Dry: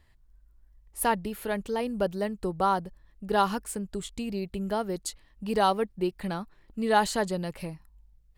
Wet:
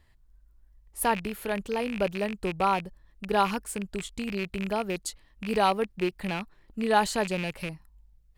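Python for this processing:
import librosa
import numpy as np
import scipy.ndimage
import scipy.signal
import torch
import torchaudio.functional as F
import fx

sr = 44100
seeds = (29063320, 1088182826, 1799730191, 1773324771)

y = fx.rattle_buzz(x, sr, strikes_db=-36.0, level_db=-24.0)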